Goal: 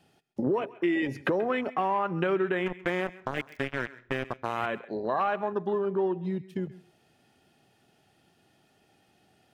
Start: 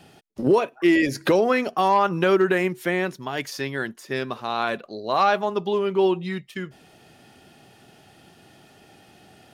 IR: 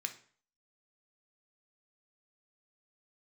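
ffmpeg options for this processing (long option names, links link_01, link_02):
-filter_complex "[0:a]asettb=1/sr,asplit=3[link_01][link_02][link_03];[link_01]atrim=end=2.664[link_04];[link_02]atrim=start=2.66:end=4.66,asetpts=PTS-STARTPTS,afade=type=in:duration=0.004:curve=qsin,afade=type=out:start_time=1.996:duration=0.004:curve=qsin,acrusher=bits=3:mix=0:aa=0.5[link_05];[link_03]atrim=start=4.656[link_06];[link_04][link_05]acrossfade=duration=0.004:curve1=hsin:curve2=qsin[link_07];[link_07][link_06]acrossfade=duration=0.004:curve1=qsin:curve2=hsin,afwtdn=0.0282,acompressor=threshold=-31dB:ratio=3,asplit=2[link_08][link_09];[link_09]aemphasis=mode=production:type=75kf[link_10];[1:a]atrim=start_sample=2205,lowpass=frequency=1800:poles=1,adelay=132[link_11];[link_10][link_11]afir=irnorm=-1:irlink=0,volume=-16dB[link_12];[link_08][link_12]amix=inputs=2:normalize=0,volume=3dB"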